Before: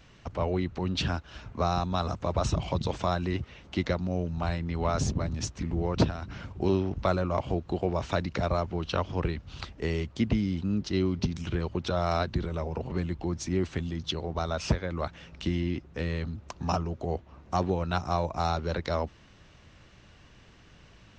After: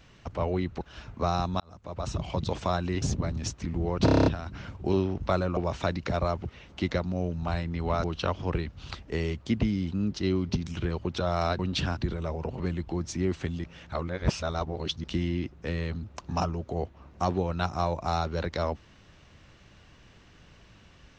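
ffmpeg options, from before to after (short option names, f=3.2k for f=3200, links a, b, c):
-filter_complex "[0:a]asplit=18[a][b][c][d][e][f][g][h][i][j][k][l][m][n][o][p][q][r];[a]atrim=end=0.812[s];[b]atrim=start=1.188:end=1.98,asetpts=PTS-STARTPTS,afade=t=out:st=0.788:d=0.004:c=hsin[t];[c]atrim=start=1.98:end=3.402,asetpts=PTS-STARTPTS,afade=t=in:d=0.87[u];[d]atrim=start=4.988:end=6.052[v];[e]atrim=start=6.018:end=6.052[w];[f]atrim=start=6.018:end=6.052[x];[g]atrim=start=6.018:end=6.052[y];[h]atrim=start=6.018:end=6.052[z];[i]atrim=start=6.018:end=6.052[aa];[j]atrim=start=6.018:end=6.052[ab];[k]atrim=start=6.018:end=7.332[ac];[l]atrim=start=7.858:end=8.742[ad];[m]atrim=start=3.398:end=4.992[ae];[n]atrim=start=8.738:end=12.292[af];[o]atrim=start=0.808:end=1.192[ag];[p]atrim=start=12.288:end=13.962[ah];[q]atrim=start=13.958:end=15.362,asetpts=PTS-STARTPTS,areverse[ai];[r]atrim=start=15.358[aj];[t][u]concat=n=2:v=0:a=1[ak];[s][ak]acrossfade=d=0.004:c1=hsin:c2=hsin[al];[al][v]acrossfade=d=0.004:c1=hsin:c2=hsin[am];[am][w]acrossfade=d=0.004:c1=hsin:c2=hsin[an];[an][x]acrossfade=d=0.004:c1=hsin:c2=hsin[ao];[ao][y]acrossfade=d=0.004:c1=hsin:c2=hsin[ap];[ap][z]acrossfade=d=0.004:c1=hsin:c2=hsin[aq];[aq][aa]acrossfade=d=0.004:c1=hsin:c2=hsin[ar];[ar][ab]acrossfade=d=0.004:c1=hsin:c2=hsin[as];[as][ac]acrossfade=d=0.004:c1=hsin:c2=hsin[at];[at][ad]acrossfade=d=0.004:c1=hsin:c2=hsin[au];[au][ae]acrossfade=d=0.004:c1=hsin:c2=hsin[av];[av][af]acrossfade=d=0.004:c1=hsin:c2=hsin[aw];[aw][ag]acrossfade=d=0.004:c1=hsin:c2=hsin[ax];[ax][ah]acrossfade=d=0.004:c1=hsin:c2=hsin[ay];[ay][ai]acrossfade=d=0.004:c1=hsin:c2=hsin[az];[az][aj]acrossfade=d=0.004:c1=hsin:c2=hsin"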